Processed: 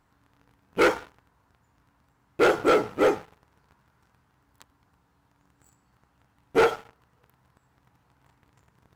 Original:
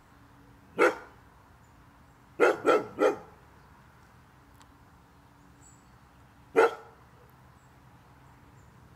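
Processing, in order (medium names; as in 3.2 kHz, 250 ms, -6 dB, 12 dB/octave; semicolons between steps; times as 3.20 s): waveshaping leveller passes 3; trim -4 dB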